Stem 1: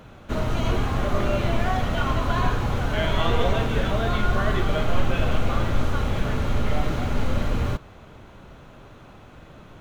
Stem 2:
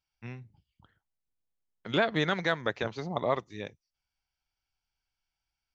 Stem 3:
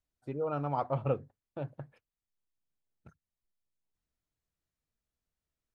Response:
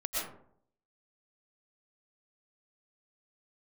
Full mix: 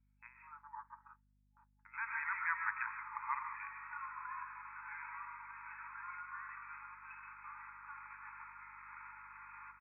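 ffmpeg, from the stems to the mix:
-filter_complex "[0:a]acompressor=threshold=-29dB:ratio=12,adelay=1950,volume=-8dB,asplit=2[link_01][link_02];[link_02]volume=-10dB[link_03];[1:a]volume=-5dB,asplit=2[link_04][link_05];[link_05]volume=-8.5dB[link_06];[2:a]afwtdn=0.00708,aemphasis=mode=reproduction:type=bsi,volume=-13dB,asplit=2[link_07][link_08];[link_08]apad=whole_len=253355[link_09];[link_04][link_09]sidechaincompress=threshold=-60dB:ratio=8:attack=16:release=752[link_10];[3:a]atrim=start_sample=2205[link_11];[link_03][link_06]amix=inputs=2:normalize=0[link_12];[link_12][link_11]afir=irnorm=-1:irlink=0[link_13];[link_01][link_10][link_07][link_13]amix=inputs=4:normalize=0,afftfilt=real='re*between(b*sr/4096,850,2600)':imag='im*between(b*sr/4096,850,2600)':win_size=4096:overlap=0.75,aeval=exprs='val(0)+0.000224*(sin(2*PI*50*n/s)+sin(2*PI*2*50*n/s)/2+sin(2*PI*3*50*n/s)/3+sin(2*PI*4*50*n/s)/4+sin(2*PI*5*50*n/s)/5)':channel_layout=same"

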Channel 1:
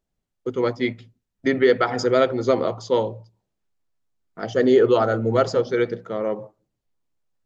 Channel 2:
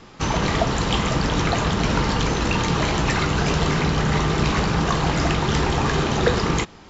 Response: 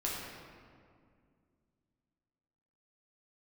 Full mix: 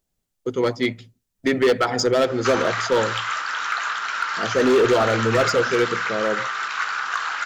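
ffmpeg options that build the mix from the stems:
-filter_complex "[0:a]highshelf=frequency=4400:gain=11,volume=1dB[link_01];[1:a]acompressor=threshold=-25dB:ratio=10,highpass=frequency=1400:width_type=q:width=4.9,adelay=2250,volume=2.5dB[link_02];[link_01][link_02]amix=inputs=2:normalize=0,asoftclip=type=hard:threshold=-12.5dB"

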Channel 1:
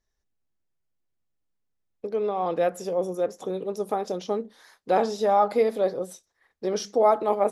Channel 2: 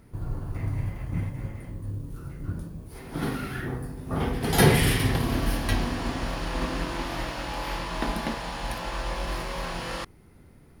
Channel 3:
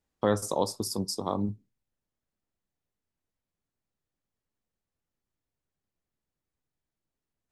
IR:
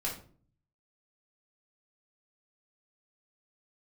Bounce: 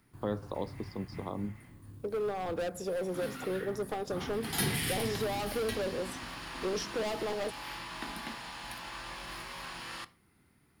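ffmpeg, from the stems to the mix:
-filter_complex "[0:a]asoftclip=type=hard:threshold=-25.5dB,volume=-3dB[link_01];[1:a]highpass=frequency=320:poles=1,equalizer=frequency=520:width=1.2:gain=-11.5,volume=-6.5dB,asplit=2[link_02][link_03];[link_03]volume=-15dB[link_04];[2:a]lowpass=frequency=3500:width=0.5412,lowpass=frequency=3500:width=1.3066,volume=-6.5dB[link_05];[3:a]atrim=start_sample=2205[link_06];[link_04][link_06]afir=irnorm=-1:irlink=0[link_07];[link_01][link_02][link_05][link_07]amix=inputs=4:normalize=0,equalizer=frequency=6000:width=7.4:gain=-4,acrossover=split=480|3000[link_08][link_09][link_10];[link_09]acompressor=threshold=-37dB:ratio=6[link_11];[link_08][link_11][link_10]amix=inputs=3:normalize=0"

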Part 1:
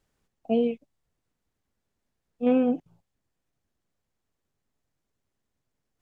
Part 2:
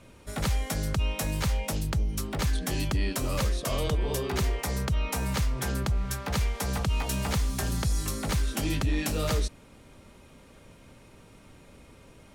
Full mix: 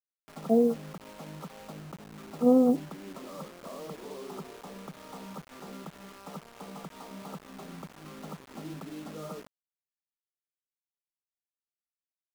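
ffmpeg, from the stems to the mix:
ffmpeg -i stem1.wav -i stem2.wav -filter_complex "[0:a]volume=1dB[link_01];[1:a]volume=-9.5dB[link_02];[link_01][link_02]amix=inputs=2:normalize=0,afftfilt=real='re*between(b*sr/4096,140,1400)':imag='im*between(b*sr/4096,140,1400)':win_size=4096:overlap=0.75,acrusher=bits=7:mix=0:aa=0.000001" out.wav

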